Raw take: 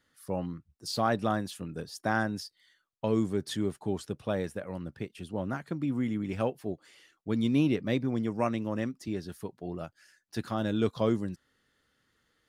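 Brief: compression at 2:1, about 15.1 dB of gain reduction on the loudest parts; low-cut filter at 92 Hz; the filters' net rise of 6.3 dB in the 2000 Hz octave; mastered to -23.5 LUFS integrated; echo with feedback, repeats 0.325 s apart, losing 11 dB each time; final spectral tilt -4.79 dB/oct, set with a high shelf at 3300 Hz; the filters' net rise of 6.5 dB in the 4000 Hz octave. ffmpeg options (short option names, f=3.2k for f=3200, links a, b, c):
-af "highpass=92,equalizer=f=2k:t=o:g=7,highshelf=f=3.3k:g=3.5,equalizer=f=4k:t=o:g=3.5,acompressor=threshold=-50dB:ratio=2,aecho=1:1:325|650|975:0.282|0.0789|0.0221,volume=20.5dB"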